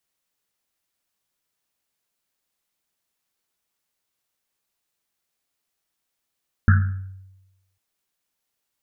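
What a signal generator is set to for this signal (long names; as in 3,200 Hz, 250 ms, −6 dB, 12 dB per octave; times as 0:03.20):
drum after Risset, pitch 95 Hz, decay 1.04 s, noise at 1,500 Hz, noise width 390 Hz, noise 15%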